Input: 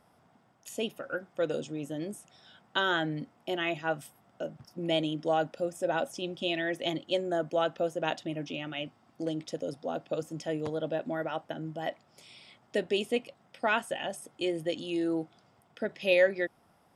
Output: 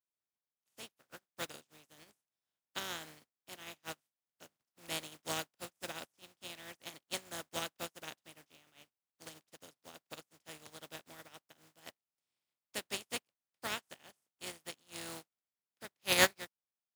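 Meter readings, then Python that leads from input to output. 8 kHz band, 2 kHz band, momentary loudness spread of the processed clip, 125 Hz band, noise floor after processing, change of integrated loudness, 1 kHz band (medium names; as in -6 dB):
+6.0 dB, -7.0 dB, 16 LU, -14.0 dB, under -85 dBFS, -7.0 dB, -10.5 dB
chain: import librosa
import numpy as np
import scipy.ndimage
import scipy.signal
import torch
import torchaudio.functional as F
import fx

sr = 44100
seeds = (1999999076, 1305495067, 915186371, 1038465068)

y = fx.spec_flatten(x, sr, power=0.29)
y = scipy.signal.sosfilt(scipy.signal.butter(2, 64.0, 'highpass', fs=sr, output='sos'), y)
y = fx.upward_expand(y, sr, threshold_db=-44.0, expansion=2.5)
y = y * librosa.db_to_amplitude(-1.5)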